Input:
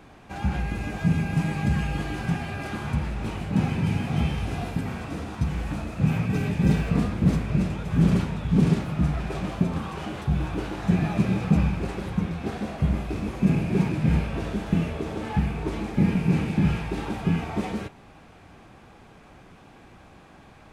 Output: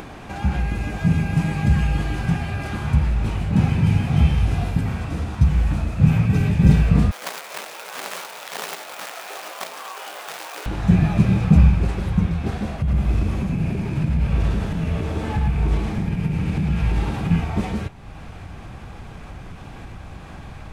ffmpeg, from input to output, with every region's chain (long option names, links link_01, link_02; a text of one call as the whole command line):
ffmpeg -i in.wav -filter_complex "[0:a]asettb=1/sr,asplit=3[link_01][link_02][link_03];[link_01]atrim=end=7.114[link_04];[link_02]atrim=start=7.11:end=10.66,asetpts=PTS-STARTPTS,afade=type=in:duration=0.004:curve=qsin,afade=type=out:start_time=3.546:duration=0.004:curve=qsin,flanger=delay=15.5:depth=4.1:speed=1.1,acrusher=bits=2:mode=log:mix=0:aa=0.000001,highpass=frequency=510:width=0.5412,highpass=frequency=510:width=1.3066[link_05];[link_03]atrim=start=10.656[link_06];[link_04][link_05]acrossfade=duration=0.004:curve1=hsin:curve2=qsin[link_07];[link_07][link_06]acrossfade=duration=0.004:curve1=qsin:curve2=hsin,asettb=1/sr,asplit=3[link_08][link_09][link_10];[link_08]atrim=end=12.774[link_11];[link_09]atrim=start=12.77:end=17.31,asetpts=PTS-STARTPTS,afade=type=in:duration=0.004:curve=qsin,afade=type=out:start_time=4.536:duration=0.004:curve=qsin,acompressor=threshold=-26dB:ratio=12:attack=3.2:release=140:knee=1:detection=peak,aecho=1:1:109:0.708,atrim=end_sample=200214[link_12];[link_10]atrim=start=17.306[link_13];[link_11][link_12]acrossfade=duration=0.004:curve1=hsin:curve2=qsin[link_14];[link_14][link_13]acrossfade=duration=0.004:curve1=qsin:curve2=hsin,asubboost=boost=3:cutoff=150,acompressor=mode=upward:threshold=-31dB:ratio=2.5,volume=3dB" out.wav